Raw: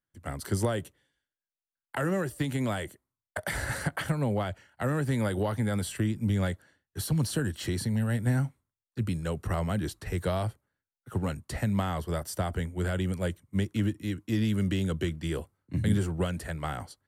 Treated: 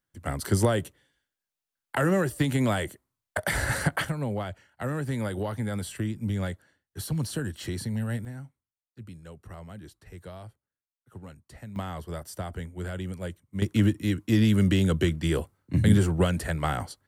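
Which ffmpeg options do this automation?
ffmpeg -i in.wav -af "asetnsamples=nb_out_samples=441:pad=0,asendcmd='4.05 volume volume -2dB;8.25 volume volume -13.5dB;11.76 volume volume -4.5dB;13.62 volume volume 6dB',volume=5dB" out.wav

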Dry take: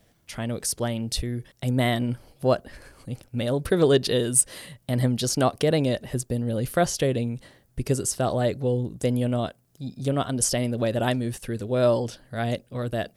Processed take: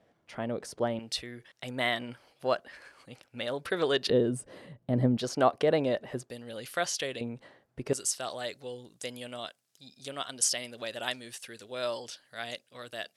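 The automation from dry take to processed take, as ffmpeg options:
ffmpeg -i in.wav -af "asetnsamples=nb_out_samples=441:pad=0,asendcmd='0.99 bandpass f 2000;4.1 bandpass f 350;5.17 bandpass f 940;6.3 bandpass f 3000;7.21 bandpass f 890;7.93 bandpass f 4200',bandpass=frequency=670:width_type=q:width=0.6:csg=0" out.wav

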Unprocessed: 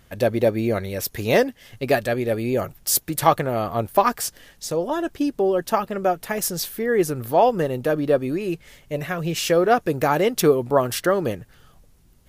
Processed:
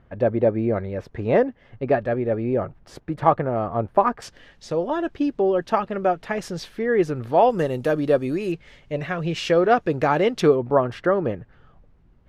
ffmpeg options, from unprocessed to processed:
ffmpeg -i in.wav -af "asetnsamples=nb_out_samples=441:pad=0,asendcmd='4.22 lowpass f 3300;7.5 lowpass f 8600;8.52 lowpass f 3800;10.56 lowpass f 1800',lowpass=1400" out.wav

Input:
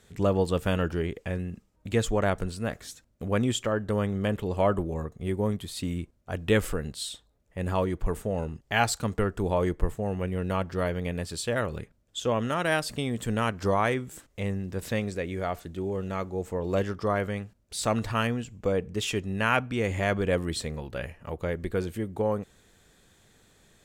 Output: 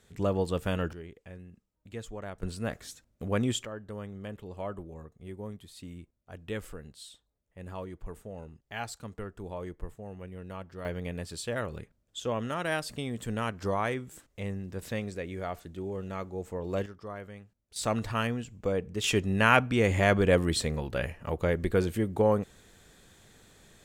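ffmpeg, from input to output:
ffmpeg -i in.wav -af "asetnsamples=nb_out_samples=441:pad=0,asendcmd='0.93 volume volume -15dB;2.43 volume volume -2.5dB;3.65 volume volume -13dB;10.85 volume volume -5dB;16.86 volume volume -14dB;17.76 volume volume -3dB;19.04 volume volume 3dB',volume=-4dB" out.wav

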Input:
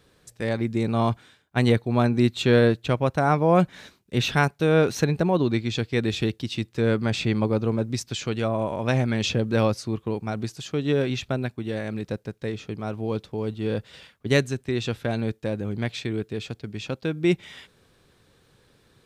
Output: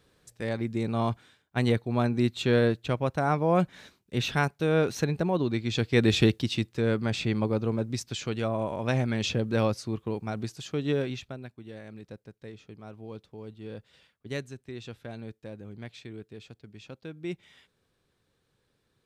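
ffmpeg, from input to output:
ffmpeg -i in.wav -af "volume=4dB,afade=type=in:start_time=5.58:duration=0.62:silence=0.354813,afade=type=out:start_time=6.2:duration=0.62:silence=0.398107,afade=type=out:start_time=10.9:duration=0.45:silence=0.316228" out.wav

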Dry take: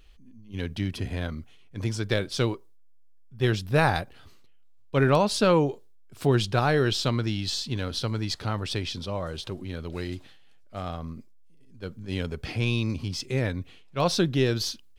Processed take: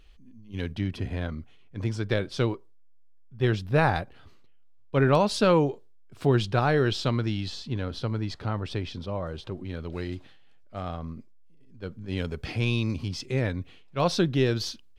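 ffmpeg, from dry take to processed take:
ffmpeg -i in.wav -af "asetnsamples=nb_out_samples=441:pad=0,asendcmd='0.72 lowpass f 2600;5.13 lowpass f 5800;5.69 lowpass f 3200;7.48 lowpass f 1600;9.65 lowpass f 3100;12.17 lowpass f 7700;13.09 lowpass f 4500',lowpass=frequency=6700:poles=1" out.wav

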